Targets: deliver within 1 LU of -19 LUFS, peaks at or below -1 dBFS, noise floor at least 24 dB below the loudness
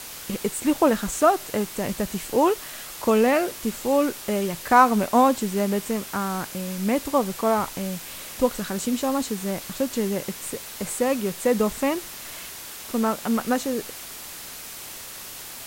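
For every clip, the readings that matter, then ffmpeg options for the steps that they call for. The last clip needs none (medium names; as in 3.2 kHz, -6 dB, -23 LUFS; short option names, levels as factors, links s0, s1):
noise floor -39 dBFS; noise floor target -48 dBFS; loudness -24.0 LUFS; peak level -4.0 dBFS; loudness target -19.0 LUFS
-> -af "afftdn=nr=9:nf=-39"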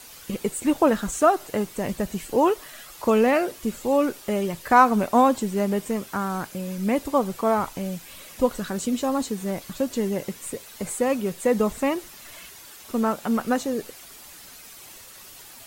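noise floor -45 dBFS; noise floor target -48 dBFS
-> -af "afftdn=nr=6:nf=-45"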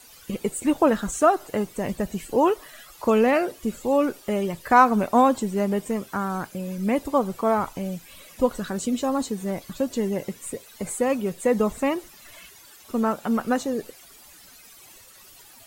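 noise floor -49 dBFS; loudness -24.0 LUFS; peak level -4.0 dBFS; loudness target -19.0 LUFS
-> -af "volume=1.78,alimiter=limit=0.891:level=0:latency=1"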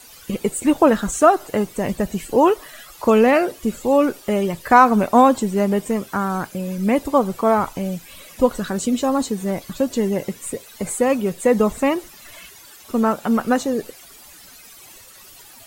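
loudness -19.5 LUFS; peak level -1.0 dBFS; noise floor -44 dBFS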